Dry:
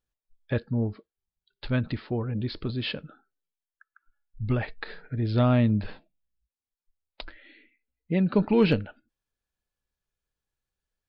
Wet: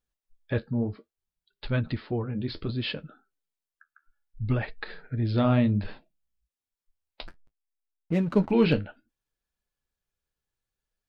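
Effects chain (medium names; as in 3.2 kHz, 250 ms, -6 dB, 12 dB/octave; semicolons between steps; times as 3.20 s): 7.27–8.51 s: hysteresis with a dead band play -35.5 dBFS; flange 0.63 Hz, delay 3.9 ms, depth 9.9 ms, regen -50%; trim +3.5 dB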